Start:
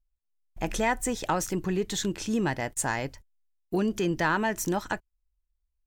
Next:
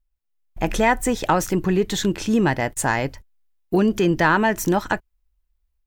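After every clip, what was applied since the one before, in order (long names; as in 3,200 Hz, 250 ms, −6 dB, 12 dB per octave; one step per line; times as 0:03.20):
parametric band 7,300 Hz −5.5 dB 1.6 octaves
automatic gain control gain up to 5 dB
level +3.5 dB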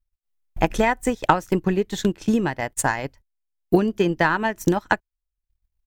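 transient designer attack +10 dB, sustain −11 dB
level −5 dB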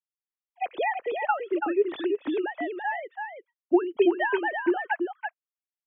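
three sine waves on the formant tracks
on a send: single-tap delay 333 ms −5.5 dB
on the sum: level −6 dB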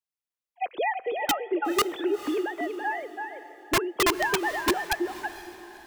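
wrap-around overflow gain 16.5 dB
feedback delay with all-pass diffusion 486 ms, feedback 41%, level −14.5 dB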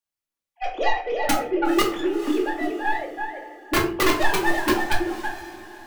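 stylus tracing distortion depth 0.47 ms
rectangular room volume 340 cubic metres, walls furnished, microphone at 2.4 metres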